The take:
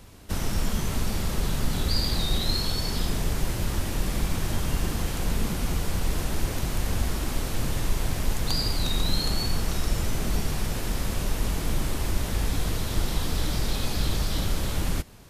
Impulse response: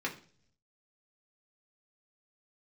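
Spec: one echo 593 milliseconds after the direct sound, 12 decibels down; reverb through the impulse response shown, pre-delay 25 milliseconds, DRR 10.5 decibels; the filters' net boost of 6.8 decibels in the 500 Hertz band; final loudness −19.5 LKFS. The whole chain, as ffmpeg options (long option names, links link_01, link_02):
-filter_complex "[0:a]equalizer=frequency=500:width_type=o:gain=8.5,aecho=1:1:593:0.251,asplit=2[link_01][link_02];[1:a]atrim=start_sample=2205,adelay=25[link_03];[link_02][link_03]afir=irnorm=-1:irlink=0,volume=-15.5dB[link_04];[link_01][link_04]amix=inputs=2:normalize=0,volume=8dB"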